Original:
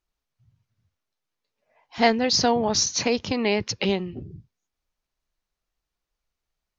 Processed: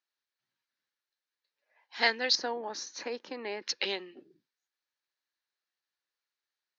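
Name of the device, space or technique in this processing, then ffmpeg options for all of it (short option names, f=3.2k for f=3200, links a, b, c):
phone speaker on a table: -filter_complex "[0:a]asettb=1/sr,asplit=3[a][b][c];[a]atrim=end=2.354[d];[b]atrim=start=2.35:end=3.62,asetpts=PTS-STARTPTS,afade=t=in:d=0.004:c=qsin,afade=t=out:st=1.266:d=0.004:c=qsin,equalizer=f=4.2k:t=o:w=2.6:g=-15[e];[c]atrim=start=3.616[f];[d][e]acrossfade=d=0.004:c1=hsin:c2=qsin[g];[g][f]acrossfade=d=0.004:c1=qsin:c2=hsin,highpass=f=360:w=0.5412,highpass=f=360:w=1.3066,equalizer=f=430:t=q:w=4:g=-7,equalizer=f=670:t=q:w=4:g=-9,equalizer=f=1.1k:t=q:w=4:g=-3,equalizer=f=1.7k:t=q:w=4:g=8,equalizer=f=4.1k:t=q:w=4:g=6,lowpass=f=6.6k:w=0.5412,lowpass=f=6.6k:w=1.3066,volume=-5dB"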